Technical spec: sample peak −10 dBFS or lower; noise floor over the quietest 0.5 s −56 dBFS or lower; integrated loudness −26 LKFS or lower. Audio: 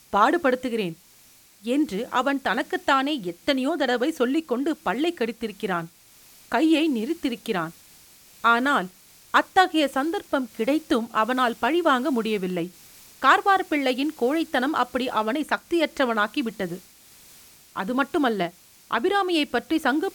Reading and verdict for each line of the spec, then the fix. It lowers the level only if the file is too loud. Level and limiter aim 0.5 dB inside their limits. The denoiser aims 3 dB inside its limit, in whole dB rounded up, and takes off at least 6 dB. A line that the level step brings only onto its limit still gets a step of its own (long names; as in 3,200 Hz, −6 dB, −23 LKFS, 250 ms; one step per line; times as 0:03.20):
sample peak −5.0 dBFS: out of spec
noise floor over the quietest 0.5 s −54 dBFS: out of spec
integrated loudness −24.0 LKFS: out of spec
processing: level −2.5 dB
brickwall limiter −10.5 dBFS